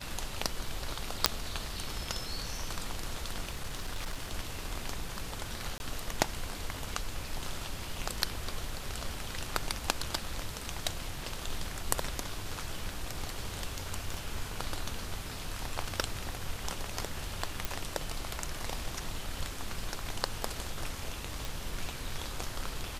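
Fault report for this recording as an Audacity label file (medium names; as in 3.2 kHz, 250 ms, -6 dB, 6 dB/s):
1.260000	1.260000	pop -2 dBFS
3.490000	4.310000	clipped -31 dBFS
5.780000	5.800000	dropout 21 ms
14.140000	14.140000	pop
17.650000	17.650000	pop
21.450000	21.450000	pop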